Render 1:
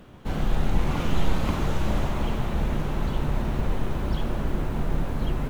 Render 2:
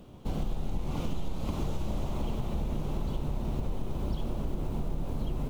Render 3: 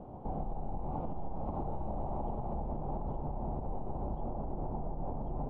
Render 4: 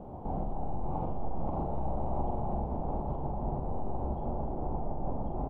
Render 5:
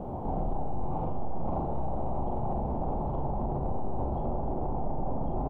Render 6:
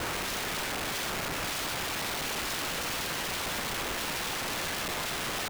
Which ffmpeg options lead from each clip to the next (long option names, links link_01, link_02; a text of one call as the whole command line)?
ffmpeg -i in.wav -af "equalizer=frequency=1700:width=1.5:gain=-13,acompressor=threshold=-25dB:ratio=6,volume=-1.5dB" out.wav
ffmpeg -i in.wav -af "alimiter=level_in=6dB:limit=-24dB:level=0:latency=1:release=214,volume=-6dB,lowpass=frequency=800:width_type=q:width=4.3,volume=1dB" out.wav
ffmpeg -i in.wav -af "aecho=1:1:43.73|288.6:0.631|0.355,volume=2dB" out.wav
ffmpeg -i in.wav -filter_complex "[0:a]alimiter=level_in=7dB:limit=-24dB:level=0:latency=1:release=22,volume=-7dB,asplit=2[link_01][link_02];[link_02]adelay=36,volume=-13dB[link_03];[link_01][link_03]amix=inputs=2:normalize=0,volume=7.5dB" out.wav
ffmpeg -i in.wav -af "aeval=exprs='(mod(66.8*val(0)+1,2)-1)/66.8':channel_layout=same,volume=8dB" out.wav